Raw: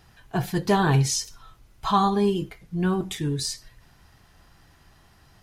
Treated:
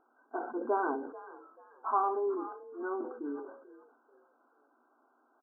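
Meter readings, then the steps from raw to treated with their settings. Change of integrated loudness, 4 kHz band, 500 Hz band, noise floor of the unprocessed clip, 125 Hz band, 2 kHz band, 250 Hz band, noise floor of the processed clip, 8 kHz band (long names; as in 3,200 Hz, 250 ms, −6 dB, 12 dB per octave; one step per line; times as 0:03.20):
−10.5 dB, below −40 dB, −7.0 dB, −57 dBFS, below −40 dB, −10.5 dB, −14.5 dB, −71 dBFS, below −40 dB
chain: brick-wall band-pass 230–1,600 Hz
echo with shifted repeats 438 ms, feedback 31%, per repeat +48 Hz, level −18 dB
level that may fall only so fast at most 71 dB per second
level −7.5 dB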